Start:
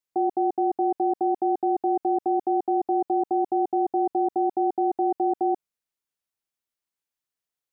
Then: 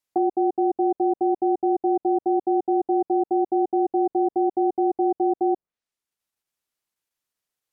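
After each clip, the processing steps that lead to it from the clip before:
treble cut that deepens with the level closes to 670 Hz, closed at −23.5 dBFS
in parallel at −3 dB: output level in coarse steps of 13 dB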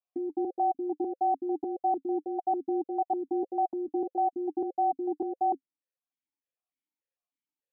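spectral tilt −1.5 dB per octave
formant filter that steps through the vowels 6.7 Hz
level +1.5 dB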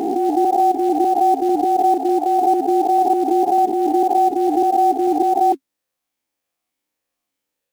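peak hold with a rise ahead of every peak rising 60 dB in 2.88 s
in parallel at −4 dB: floating-point word with a short mantissa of 2 bits
on the sum: level +6.5 dB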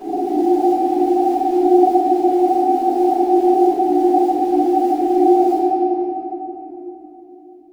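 flanger 0.59 Hz, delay 2.5 ms, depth 1.6 ms, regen +60%
convolution reverb RT60 3.5 s, pre-delay 3 ms, DRR −19 dB
level −17 dB

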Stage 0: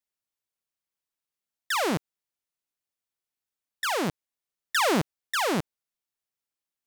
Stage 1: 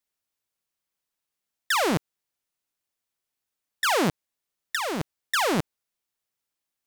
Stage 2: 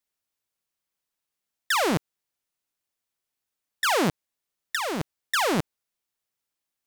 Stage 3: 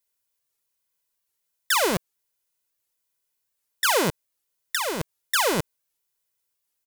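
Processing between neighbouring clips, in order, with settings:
compressor whose output falls as the input rises −26 dBFS, ratio −0.5; level +3 dB
no processing that can be heard
high-shelf EQ 7,100 Hz +9 dB; comb filter 2 ms, depth 43%; wow of a warped record 78 rpm, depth 250 cents

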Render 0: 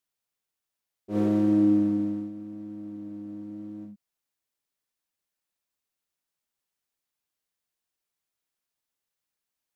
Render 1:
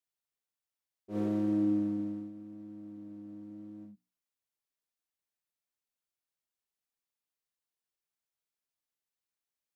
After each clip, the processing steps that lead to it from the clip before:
mains-hum notches 60/120/180/240/300 Hz
level −7.5 dB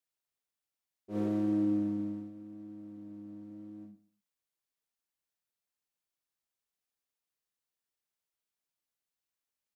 repeating echo 127 ms, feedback 23%, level −17.5 dB

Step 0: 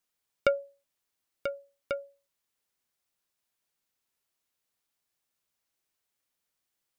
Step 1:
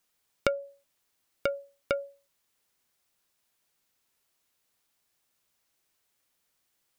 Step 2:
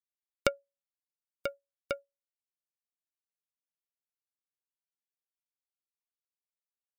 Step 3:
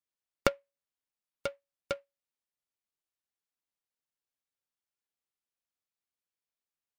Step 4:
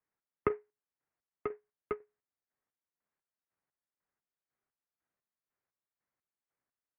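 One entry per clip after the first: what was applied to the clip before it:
downward compressor 5 to 1, threshold −31 dBFS, peak gain reduction 11 dB; level +7 dB
high-shelf EQ 5,000 Hz +7.5 dB; expander for the loud parts 2.5 to 1, over −47 dBFS
short delay modulated by noise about 1,500 Hz, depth 0.043 ms
one-sided soft clipper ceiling −10 dBFS; square-wave tremolo 2 Hz, depth 65%, duty 40%; single-sideband voice off tune −140 Hz 190–2,200 Hz; level +8 dB

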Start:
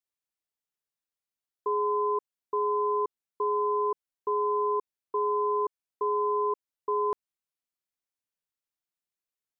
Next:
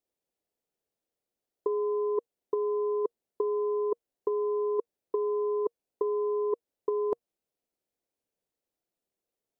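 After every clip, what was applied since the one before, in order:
drawn EQ curve 140 Hz 0 dB, 470 Hz +9 dB, 710 Hz +4 dB, 1,100 Hz −7 dB
compressor whose output falls as the input rises −26 dBFS, ratio −0.5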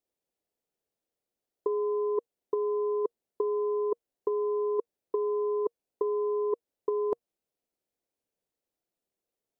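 no processing that can be heard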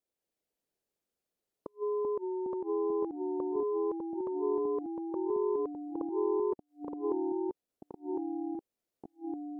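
gate with flip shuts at −23 dBFS, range −40 dB
delay with pitch and tempo change per echo 184 ms, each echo −2 semitones, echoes 3
level −3 dB

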